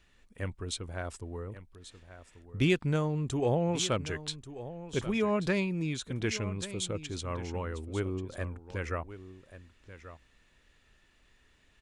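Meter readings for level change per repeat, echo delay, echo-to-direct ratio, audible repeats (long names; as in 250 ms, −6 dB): repeats not evenly spaced, 1,136 ms, −14.0 dB, 1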